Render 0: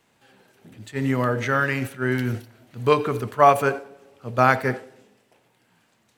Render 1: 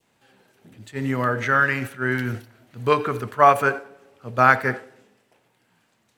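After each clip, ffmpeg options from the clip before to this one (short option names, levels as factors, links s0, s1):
-af "adynamicequalizer=threshold=0.02:dfrequency=1500:dqfactor=1.3:tfrequency=1500:tqfactor=1.3:attack=5:release=100:ratio=0.375:range=3.5:mode=boostabove:tftype=bell,volume=0.794"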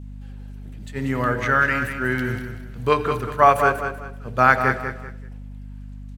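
-af "aecho=1:1:192|384|576:0.398|0.115|0.0335,aeval=exprs='val(0)+0.0178*(sin(2*PI*50*n/s)+sin(2*PI*2*50*n/s)/2+sin(2*PI*3*50*n/s)/3+sin(2*PI*4*50*n/s)/4+sin(2*PI*5*50*n/s)/5)':c=same"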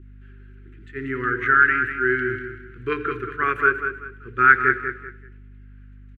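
-af "firequalizer=gain_entry='entry(120,0);entry(180,-8);entry(370,14);entry(620,-29);entry(1400,13);entry(4800,-14);entry(6800,-14);entry(10000,-20)':delay=0.05:min_phase=1,volume=0.422"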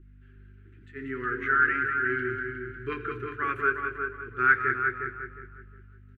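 -filter_complex "[0:a]flanger=delay=6.1:depth=7.1:regen=-39:speed=0.38:shape=triangular,asplit=2[s0][s1];[s1]adelay=359,lowpass=f=2100:p=1,volume=0.531,asplit=2[s2][s3];[s3]adelay=359,lowpass=f=2100:p=1,volume=0.27,asplit=2[s4][s5];[s5]adelay=359,lowpass=f=2100:p=1,volume=0.27,asplit=2[s6][s7];[s7]adelay=359,lowpass=f=2100:p=1,volume=0.27[s8];[s2][s4][s6][s8]amix=inputs=4:normalize=0[s9];[s0][s9]amix=inputs=2:normalize=0,volume=0.668"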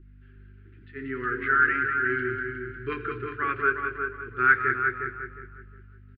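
-af "aresample=11025,aresample=44100,volume=1.19"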